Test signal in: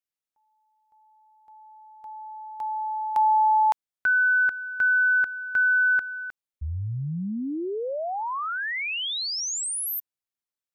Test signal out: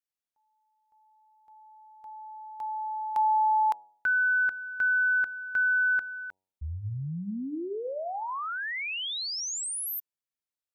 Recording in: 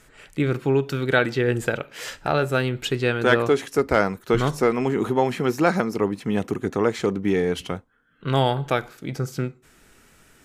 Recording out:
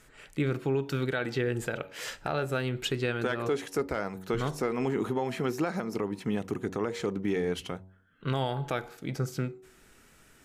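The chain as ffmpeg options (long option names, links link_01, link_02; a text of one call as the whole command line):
ffmpeg -i in.wav -af "bandreject=frequency=94.17:width_type=h:width=4,bandreject=frequency=188.34:width_type=h:width=4,bandreject=frequency=282.51:width_type=h:width=4,bandreject=frequency=376.68:width_type=h:width=4,bandreject=frequency=470.85:width_type=h:width=4,bandreject=frequency=565.02:width_type=h:width=4,bandreject=frequency=659.19:width_type=h:width=4,bandreject=frequency=753.36:width_type=h:width=4,bandreject=frequency=847.53:width_type=h:width=4,bandreject=frequency=941.7:width_type=h:width=4,alimiter=limit=-15.5dB:level=0:latency=1:release=188,volume=-4dB" out.wav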